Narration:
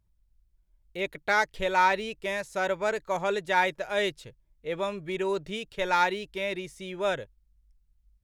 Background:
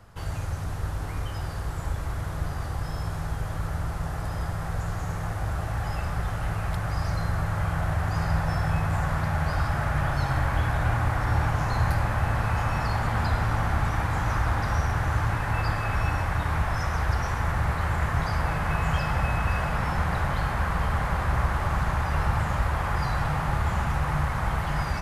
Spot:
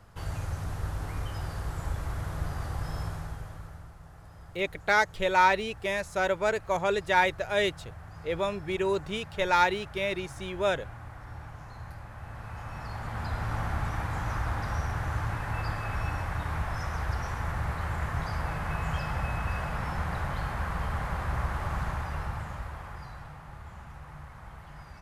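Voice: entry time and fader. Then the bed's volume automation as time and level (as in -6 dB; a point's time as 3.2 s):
3.60 s, +1.0 dB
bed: 3.02 s -3 dB
3.96 s -19 dB
12.07 s -19 dB
13.56 s -6 dB
21.85 s -6 dB
23.4 s -19.5 dB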